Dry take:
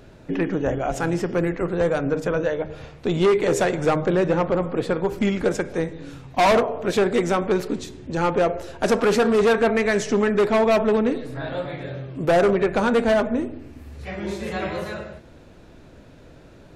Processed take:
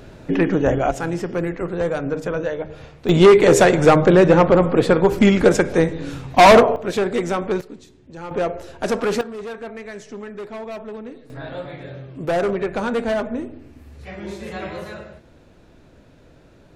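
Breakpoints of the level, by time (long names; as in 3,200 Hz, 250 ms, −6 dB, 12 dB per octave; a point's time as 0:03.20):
+5.5 dB
from 0:00.91 −1 dB
from 0:03.09 +8 dB
from 0:06.76 −1 dB
from 0:07.61 −12 dB
from 0:08.31 −2 dB
from 0:09.21 −14 dB
from 0:11.30 −3 dB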